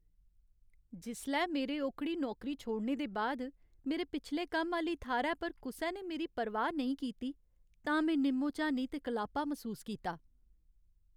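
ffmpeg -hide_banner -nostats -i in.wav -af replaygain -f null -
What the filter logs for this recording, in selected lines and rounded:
track_gain = +17.1 dB
track_peak = 0.062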